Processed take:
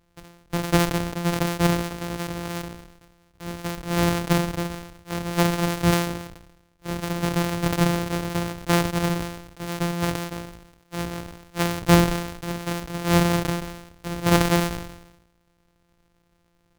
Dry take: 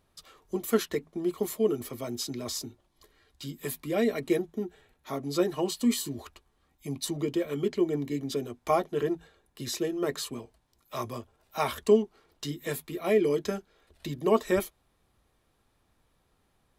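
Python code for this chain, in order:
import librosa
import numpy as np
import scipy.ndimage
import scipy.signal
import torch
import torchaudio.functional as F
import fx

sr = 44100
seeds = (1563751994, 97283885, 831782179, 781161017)

y = np.r_[np.sort(x[:len(x) // 256 * 256].reshape(-1, 256), axis=1).ravel(), x[len(x) // 256 * 256:]]
y = fx.sustainer(y, sr, db_per_s=63.0)
y = y * 10.0 ** (4.0 / 20.0)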